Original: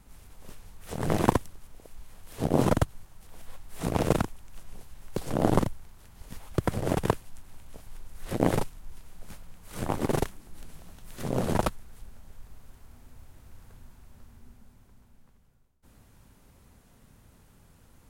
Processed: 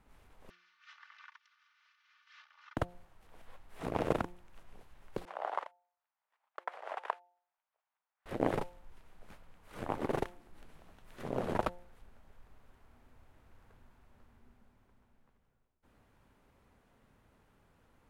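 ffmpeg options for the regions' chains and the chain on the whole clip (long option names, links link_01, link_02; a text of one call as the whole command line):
ffmpeg -i in.wav -filter_complex "[0:a]asettb=1/sr,asplit=3[link_01][link_02][link_03];[link_01]atrim=end=0.504[link_04];[link_02]atrim=start=0.5:end=2.77,asetpts=PTS-STARTPTS,afade=type=in:duration=0.004:curve=qsin,afade=type=out:start_time=2.266:duration=0.004:curve=qsin,aecho=1:1:3.4:0.83,atrim=end_sample=100107,acompressor=threshold=-34dB:ratio=6:attack=3.2:release=140:knee=1:detection=peak,asuperpass=centerf=2700:order=12:qfactor=0.57[link_05];[link_03]atrim=start=2.766[link_06];[link_04][link_05]acrossfade=duration=0.004:curve1=hsin:curve2=qsin[link_07];[link_07][link_06]acrossfade=duration=0.004:curve1=qsin:curve2=hsin,asettb=1/sr,asplit=3[link_08][link_09][link_10];[link_08]atrim=end=5.254[link_11];[link_09]atrim=start=5.25:end=8.26,asetpts=PTS-STARTPTS,afade=type=in:duration=0.004:curve=qsin,afade=type=out:start_time=3.006:duration=0.004:curve=qsin,highpass=frequency=740:width=0.5412,highpass=frequency=740:width=1.3066,aemphasis=mode=reproduction:type=75fm,agate=range=-24dB:threshold=-53dB:ratio=16:release=100:detection=peak[link_12];[link_10]atrim=start=8.256[link_13];[link_11][link_12]acrossfade=duration=0.004:curve1=hsin:curve2=qsin[link_14];[link_14][link_13]acrossfade=duration=0.004:curve1=qsin:curve2=hsin,bass=frequency=250:gain=-8,treble=frequency=4000:gain=-14,bandreject=frequency=176.5:width_type=h:width=4,bandreject=frequency=353:width_type=h:width=4,bandreject=frequency=529.5:width_type=h:width=4,bandreject=frequency=706:width_type=h:width=4,bandreject=frequency=882.5:width_type=h:width=4,volume=-4.5dB" out.wav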